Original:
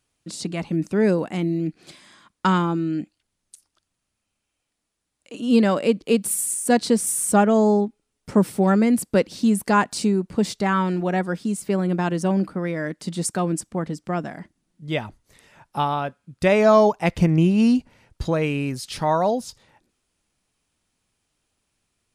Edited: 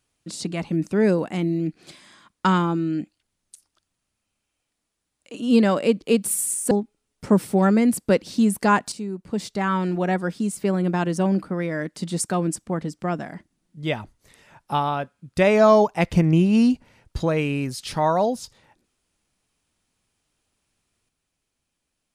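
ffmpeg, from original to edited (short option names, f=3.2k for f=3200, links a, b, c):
-filter_complex "[0:a]asplit=3[a][b][c];[a]atrim=end=6.712[d];[b]atrim=start=7.758:end=9.97,asetpts=PTS-STARTPTS,afade=t=out:st=2.208:d=0.004:c=hsin:silence=0.211349[e];[c]atrim=start=9.97,asetpts=PTS-STARTPTS,afade=t=in:d=1.05:silence=0.211349[f];[e][f]concat=n=2:v=0:a=1[g];[d][g]acrossfade=d=0.004:c1=hsin:c2=hsin"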